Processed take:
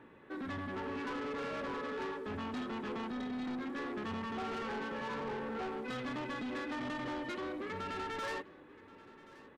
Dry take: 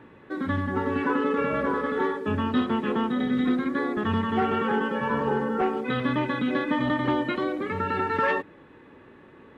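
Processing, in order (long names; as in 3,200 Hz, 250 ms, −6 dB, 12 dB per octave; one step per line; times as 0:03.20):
parametric band 96 Hz −5 dB 1.9 octaves
soft clipping −30 dBFS, distortion −8 dB
single-tap delay 1,078 ms −20 dB
level −6.5 dB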